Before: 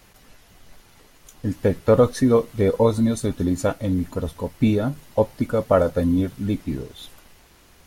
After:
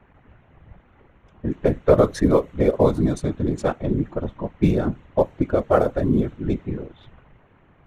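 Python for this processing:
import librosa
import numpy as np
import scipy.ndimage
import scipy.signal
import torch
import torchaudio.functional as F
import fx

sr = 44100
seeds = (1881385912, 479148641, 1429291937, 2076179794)

y = fx.wiener(x, sr, points=9)
y = fx.env_lowpass(y, sr, base_hz=2100.0, full_db=-14.0)
y = fx.whisperise(y, sr, seeds[0])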